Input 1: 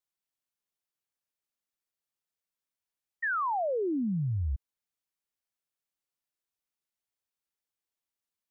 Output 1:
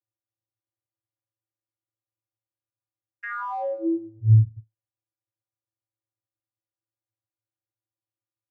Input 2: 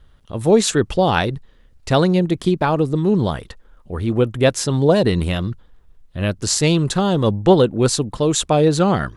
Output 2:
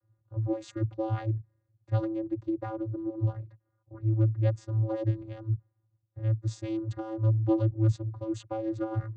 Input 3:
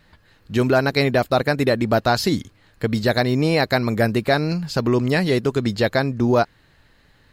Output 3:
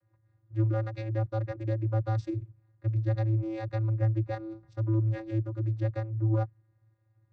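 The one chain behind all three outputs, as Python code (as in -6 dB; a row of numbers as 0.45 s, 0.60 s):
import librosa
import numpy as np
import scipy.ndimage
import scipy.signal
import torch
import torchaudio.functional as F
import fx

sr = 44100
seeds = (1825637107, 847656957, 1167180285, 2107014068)

y = fx.wiener(x, sr, points=15)
y = fx.vocoder(y, sr, bands=16, carrier='square', carrier_hz=110.0)
y = y * 10.0 ** (-30 / 20.0) / np.sqrt(np.mean(np.square(y)))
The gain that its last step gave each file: +9.5 dB, -10.5 dB, -8.5 dB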